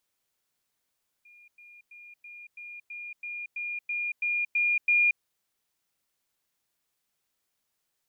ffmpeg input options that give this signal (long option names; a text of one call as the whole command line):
ffmpeg -f lavfi -i "aevalsrc='pow(10,(-52+3*floor(t/0.33))/20)*sin(2*PI*2420*t)*clip(min(mod(t,0.33),0.23-mod(t,0.33))/0.005,0,1)':duration=3.96:sample_rate=44100" out.wav